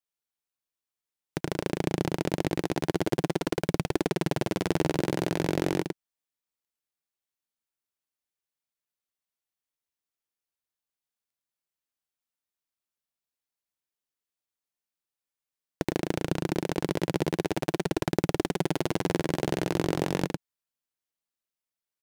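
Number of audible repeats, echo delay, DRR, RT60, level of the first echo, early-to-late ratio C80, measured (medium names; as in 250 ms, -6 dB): 1, 108 ms, no reverb, no reverb, -4.5 dB, no reverb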